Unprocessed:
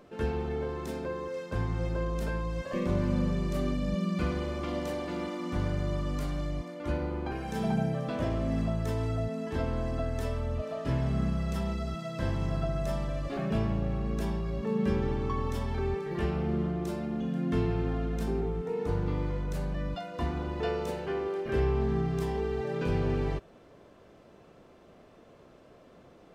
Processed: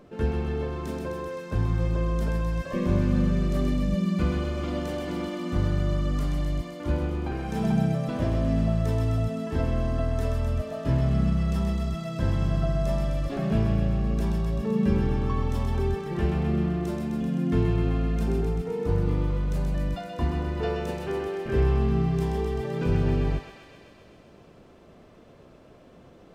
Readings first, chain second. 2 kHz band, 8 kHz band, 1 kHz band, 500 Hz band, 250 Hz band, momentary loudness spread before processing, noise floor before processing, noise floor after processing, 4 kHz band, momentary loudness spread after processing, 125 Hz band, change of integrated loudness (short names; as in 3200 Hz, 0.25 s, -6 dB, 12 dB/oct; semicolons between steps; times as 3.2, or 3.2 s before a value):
+2.0 dB, n/a, +2.0 dB, +2.0 dB, +5.0 dB, 5 LU, -56 dBFS, -52 dBFS, +3.0 dB, 6 LU, +6.5 dB, +5.0 dB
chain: low shelf 330 Hz +7 dB; on a send: thinning echo 0.129 s, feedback 79%, high-pass 930 Hz, level -4.5 dB